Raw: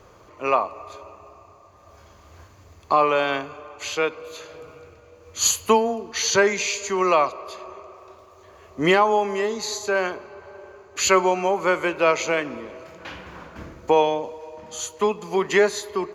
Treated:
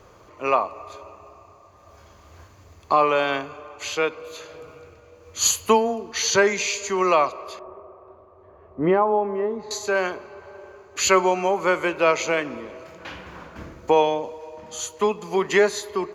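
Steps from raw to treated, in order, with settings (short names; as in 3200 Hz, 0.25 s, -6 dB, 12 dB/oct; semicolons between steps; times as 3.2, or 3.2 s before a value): 7.59–9.71 LPF 1000 Hz 12 dB/oct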